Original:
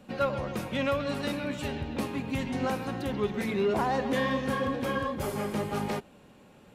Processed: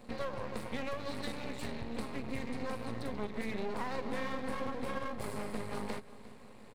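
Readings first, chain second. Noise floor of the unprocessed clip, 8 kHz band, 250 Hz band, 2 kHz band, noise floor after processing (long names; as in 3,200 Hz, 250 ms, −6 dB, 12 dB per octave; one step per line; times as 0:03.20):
−55 dBFS, −6.5 dB, −9.0 dB, −8.0 dB, −52 dBFS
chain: EQ curve with evenly spaced ripples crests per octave 0.96, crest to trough 11 dB
downward compressor 2.5 to 1, threshold −37 dBFS, peak gain reduction 10.5 dB
half-wave rectification
on a send: repeating echo 353 ms, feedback 52%, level −18.5 dB
on the sum: level +1.5 dB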